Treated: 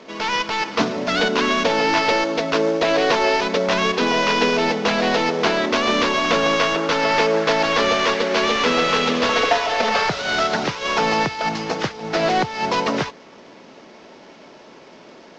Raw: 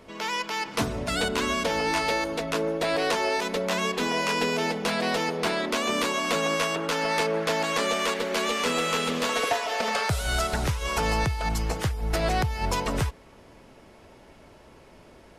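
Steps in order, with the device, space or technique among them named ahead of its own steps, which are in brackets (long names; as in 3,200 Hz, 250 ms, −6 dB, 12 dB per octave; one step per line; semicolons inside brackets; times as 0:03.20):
early wireless headset (high-pass filter 180 Hz 24 dB per octave; variable-slope delta modulation 32 kbit/s)
level +8.5 dB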